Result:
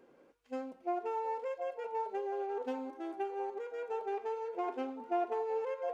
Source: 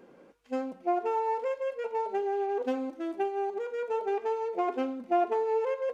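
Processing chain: bell 190 Hz -11.5 dB 0.27 oct; delay with a stepping band-pass 0.718 s, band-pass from 770 Hz, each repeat 0.7 oct, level -8 dB; gain -7 dB

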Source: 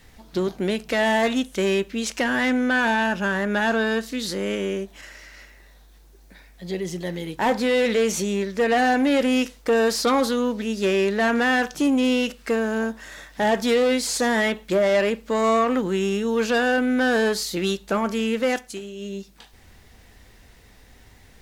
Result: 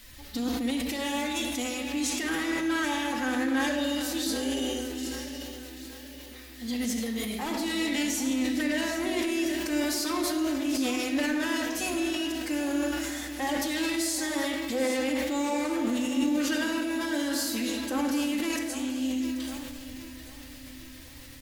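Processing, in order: pre-emphasis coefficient 0.8; spectral gain 3.69–6.18, 710–2700 Hz -15 dB; low shelf 430 Hz +4 dB; compressor 8:1, threshold -36 dBFS, peak gain reduction 11 dB; limiter -32 dBFS, peak gain reduction 6.5 dB; band noise 1400–5000 Hz -65 dBFS; formant-preserving pitch shift +4.5 st; feedback echo 0.784 s, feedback 50%, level -12.5 dB; shoebox room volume 3000 m³, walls mixed, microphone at 2.1 m; sustainer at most 23 dB/s; gain +6.5 dB

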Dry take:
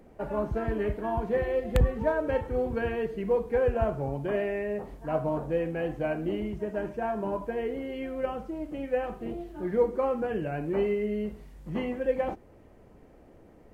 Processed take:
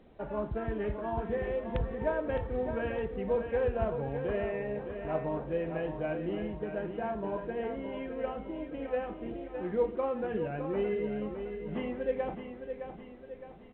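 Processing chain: 1.25–1.93 compressor, threshold -24 dBFS, peak gain reduction 7.5 dB; on a send: feedback echo 0.613 s, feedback 48%, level -8 dB; on the sum: gain -4.5 dB; A-law 64 kbps 8000 Hz

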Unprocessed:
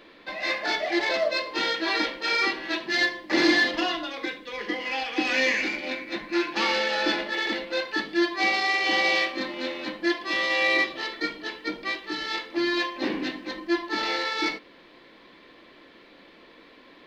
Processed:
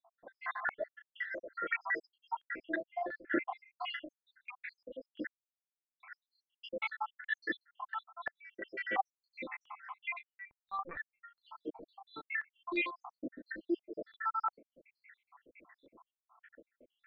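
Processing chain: random spectral dropouts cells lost 85%; 5.27–6 mute; 10.19–11.21 LPC vocoder at 8 kHz pitch kept; stepped low-pass 2.9 Hz 670–2300 Hz; gain -7.5 dB

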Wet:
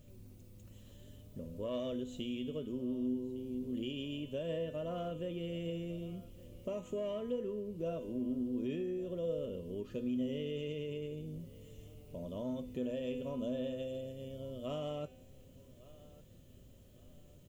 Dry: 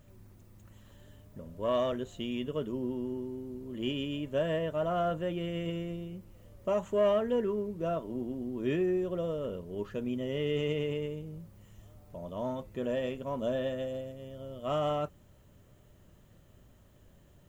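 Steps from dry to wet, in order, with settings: band shelf 1200 Hz -10 dB; compressor 3:1, threshold -39 dBFS, peak gain reduction 10.5 dB; resonator 250 Hz, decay 1.1 s, mix 80%; on a send: feedback echo 1.157 s, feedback 35%, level -21 dB; on the sum: gain +13.5 dB

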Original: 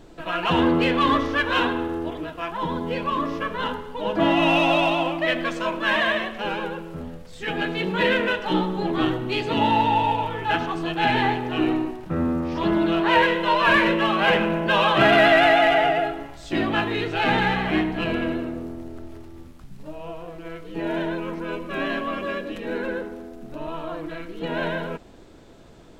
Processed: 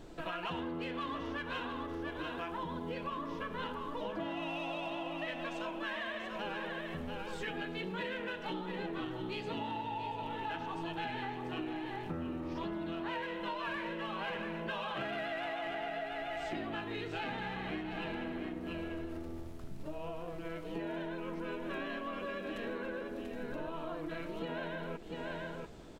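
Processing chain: on a send: echo 0.688 s -9 dB; on the sum: compressor 12:1, threshold -32 dBFS, peak gain reduction 19.5 dB; gain -4 dB

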